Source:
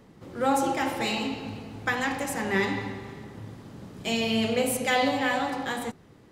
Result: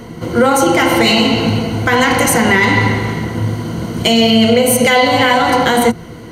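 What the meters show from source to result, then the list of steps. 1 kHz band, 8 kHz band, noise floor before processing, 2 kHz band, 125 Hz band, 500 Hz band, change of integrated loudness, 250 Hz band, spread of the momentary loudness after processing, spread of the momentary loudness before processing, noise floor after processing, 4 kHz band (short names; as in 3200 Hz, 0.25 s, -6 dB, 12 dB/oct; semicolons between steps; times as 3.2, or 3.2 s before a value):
+14.5 dB, +16.5 dB, -54 dBFS, +15.0 dB, +20.5 dB, +16.0 dB, +15.0 dB, +16.0 dB, 9 LU, 18 LU, -31 dBFS, +17.5 dB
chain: ripple EQ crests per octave 1.9, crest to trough 11 dB; compressor, threshold -27 dBFS, peak gain reduction 10 dB; maximiser +22 dB; gain -1 dB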